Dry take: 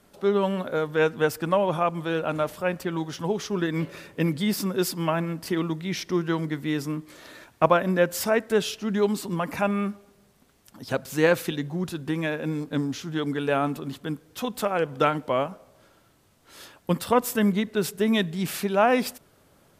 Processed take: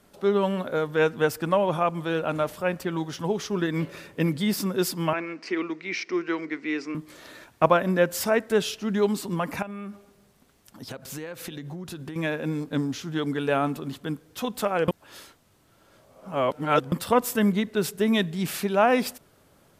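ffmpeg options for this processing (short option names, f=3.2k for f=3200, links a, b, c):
-filter_complex "[0:a]asettb=1/sr,asplit=3[a][b][c];[a]atrim=end=5.134[d];[b]atrim=start=5.13:end=6.95,asetpts=PTS-STARTPTS,afade=t=in:d=0.004:c=qsin,afade=t=out:st=1.816:d=0.004:c=qsin,highpass=f=280:w=0.5412,highpass=f=280:w=1.3066,equalizer=f=580:t=q:w=4:g=-6,equalizer=f=880:t=q:w=4:g=-6,equalizer=f=2.3k:t=q:w=4:g=10,equalizer=f=3.4k:t=q:w=4:g=-9,lowpass=f=5.7k:w=0.5412,lowpass=f=5.7k:w=1.3066[e];[c]atrim=start=6.946[f];[d][e]acrossfade=d=0.004:c1=hsin:c2=qsin[g];[g][f]acrossfade=d=0.004:c1=qsin:c2=hsin,asettb=1/sr,asplit=3[h][i][j];[h]atrim=end=9.624[k];[i]atrim=start=9.62:end=12.16,asetpts=PTS-STARTPTS,afade=t=in:d=0.004:c=qsin,afade=t=out:st=2.536:d=0.004:c=qsin,acompressor=threshold=-32dB:ratio=16:attack=3.2:release=140:knee=1:detection=peak[l];[j]atrim=start=12.156[m];[k][l]acrossfade=d=0.004:c1=hsin:c2=qsin[n];[n][m]acrossfade=d=0.004:c1=qsin:c2=hsin,asplit=3[o][p][q];[o]atrim=end=14.882[r];[p]atrim=start=14.878:end=16.922,asetpts=PTS-STARTPTS,areverse[s];[q]atrim=start=16.918[t];[r][s]acrossfade=d=0.004:c1=hsin:c2=hsin[u];[u][t]acrossfade=d=0.004:c1=hsin:c2=hsin"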